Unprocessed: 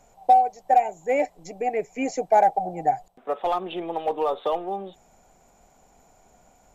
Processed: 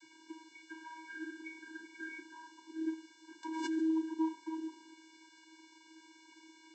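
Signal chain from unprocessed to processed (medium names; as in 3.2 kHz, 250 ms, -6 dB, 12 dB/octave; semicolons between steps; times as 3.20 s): knee-point frequency compression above 1.6 kHz 4:1; 0.71–1.68 s: flutter echo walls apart 10.1 m, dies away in 0.57 s; 2.03–2.77 s: time-frequency box 360–1900 Hz +12 dB; high-order bell 740 Hz -11 dB 2.6 oct; on a send at -21 dB: reverberation RT60 0.75 s, pre-delay 47 ms; on the sum: compression 16:1, threshold -31 dBFS, peak gain reduction 19.5 dB; 2.18–2.78 s: tilt EQ -1.5 dB/octave; word length cut 8-bit, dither triangular; chord resonator C#2 minor, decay 0.31 s; vocoder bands 32, square 320 Hz; 3.43–4.00 s: swell ahead of each attack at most 27 dB/s; trim +9 dB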